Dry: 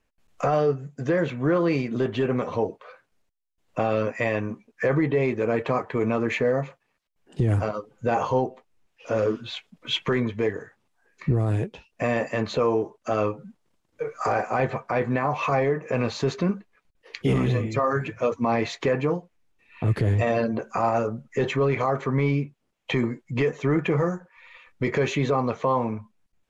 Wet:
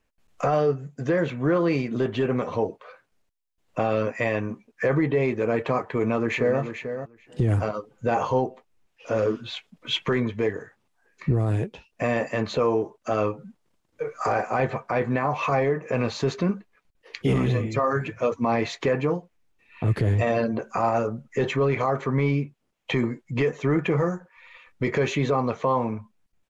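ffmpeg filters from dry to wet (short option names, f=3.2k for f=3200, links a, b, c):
-filter_complex "[0:a]asplit=2[a][b];[b]afade=t=in:st=5.81:d=0.01,afade=t=out:st=6.61:d=0.01,aecho=0:1:440|880:0.354813|0.0354813[c];[a][c]amix=inputs=2:normalize=0"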